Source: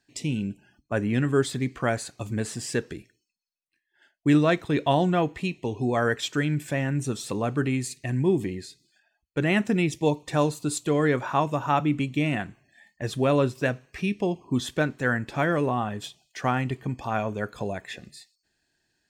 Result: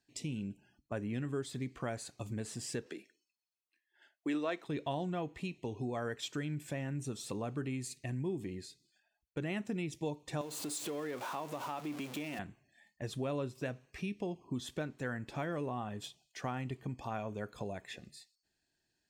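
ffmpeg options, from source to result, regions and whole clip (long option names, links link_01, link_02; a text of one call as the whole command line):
ffmpeg -i in.wav -filter_complex "[0:a]asettb=1/sr,asplit=3[link_01][link_02][link_03];[link_01]atrim=end=2.864[link_04];[link_02]atrim=start=2.86:end=4.67,asetpts=PTS-STARTPTS,afade=type=in:duration=0.004:curve=qsin,afade=type=out:start_time=1.806:duration=0.004:curve=qsin,highpass=frequency=230:width=0.5412,highpass=frequency=230:width=1.3066,equalizer=frequency=1500:width=0.33:gain=6[link_05];[link_03]atrim=start=4.666[link_06];[link_04][link_05]acrossfade=duration=0.004:curve1=hsin:curve2=qsin[link_07];[link_07][link_06]acrossfade=duration=0.004:curve1=qsin:curve2=hsin,asettb=1/sr,asplit=3[link_08][link_09][link_10];[link_08]atrim=end=10.414[link_11];[link_09]atrim=start=10.41:end=12.39,asetpts=PTS-STARTPTS,afade=type=in:duration=0.004:curve=qsin,afade=type=out:start_time=1.976:duration=0.004:curve=qsin,aeval=exprs='val(0)+0.5*0.0376*sgn(val(0))':channel_layout=same,highpass=270,acompressor=threshold=-29dB:ratio=2:attack=3.2:release=140:knee=1:detection=peak[link_12];[link_10]atrim=start=12.386[link_13];[link_11][link_12]acrossfade=duration=0.004:curve1=hsin:curve2=qsin[link_14];[link_14][link_13]acrossfade=duration=0.004:curve1=qsin:curve2=hsin,equalizer=frequency=1600:width=1.7:gain=-3.5,acompressor=threshold=-29dB:ratio=2.5,volume=-7.5dB" out.wav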